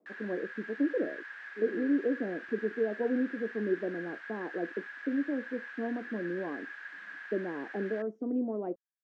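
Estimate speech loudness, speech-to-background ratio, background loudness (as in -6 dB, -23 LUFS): -34.5 LUFS, 9.5 dB, -44.0 LUFS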